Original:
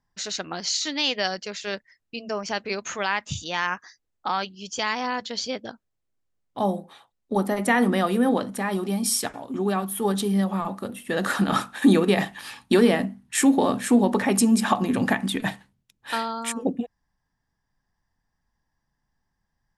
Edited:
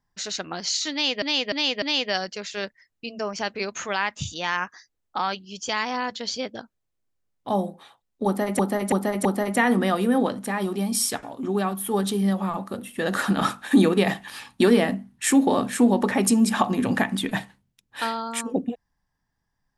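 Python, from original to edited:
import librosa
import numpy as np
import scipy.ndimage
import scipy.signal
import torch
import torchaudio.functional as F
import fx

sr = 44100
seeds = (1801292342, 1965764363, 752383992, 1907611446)

y = fx.edit(x, sr, fx.repeat(start_s=0.92, length_s=0.3, count=4),
    fx.repeat(start_s=7.36, length_s=0.33, count=4), tone=tone)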